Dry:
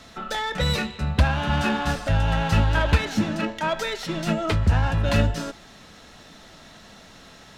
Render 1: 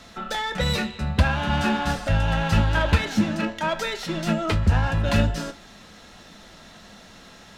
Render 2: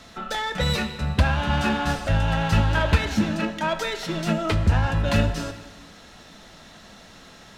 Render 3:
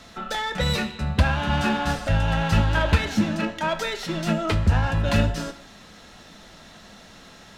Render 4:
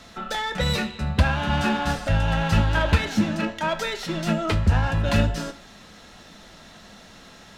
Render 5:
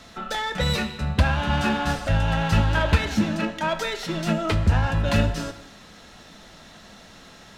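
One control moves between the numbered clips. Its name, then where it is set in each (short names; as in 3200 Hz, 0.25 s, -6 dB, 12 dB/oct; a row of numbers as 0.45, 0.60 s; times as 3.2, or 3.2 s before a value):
non-linear reverb, gate: 80, 540, 190, 130, 330 ms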